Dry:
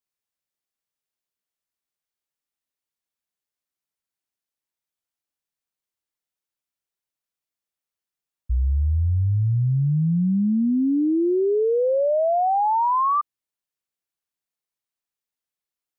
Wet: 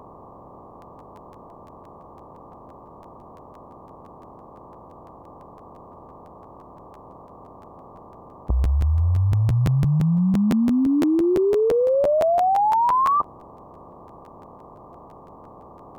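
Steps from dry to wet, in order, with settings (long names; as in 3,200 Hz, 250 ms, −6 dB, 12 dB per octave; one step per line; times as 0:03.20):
compressor on every frequency bin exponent 0.4
regular buffer underruns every 0.17 s, samples 512, repeat, from 0:00.81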